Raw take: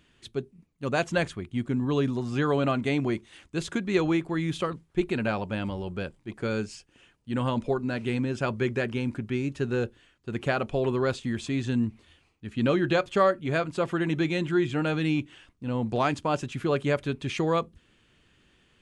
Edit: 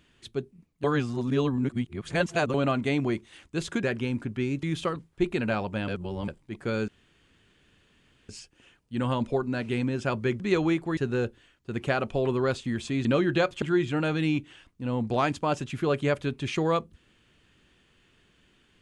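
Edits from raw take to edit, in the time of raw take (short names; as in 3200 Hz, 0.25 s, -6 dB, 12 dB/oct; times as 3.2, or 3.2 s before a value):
0.84–2.54 reverse
3.83–4.4 swap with 8.76–9.56
5.65–6.05 reverse
6.65 insert room tone 1.41 s
11.64–12.6 cut
13.17–14.44 cut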